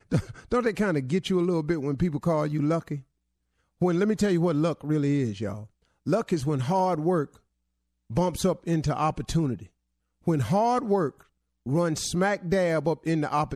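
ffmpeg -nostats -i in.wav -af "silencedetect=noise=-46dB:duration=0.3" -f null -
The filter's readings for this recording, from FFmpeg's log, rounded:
silence_start: 3.02
silence_end: 3.81 | silence_duration: 0.79
silence_start: 5.66
silence_end: 6.06 | silence_duration: 0.40
silence_start: 7.36
silence_end: 8.10 | silence_duration: 0.74
silence_start: 9.67
silence_end: 10.27 | silence_duration: 0.60
silence_start: 11.21
silence_end: 11.66 | silence_duration: 0.45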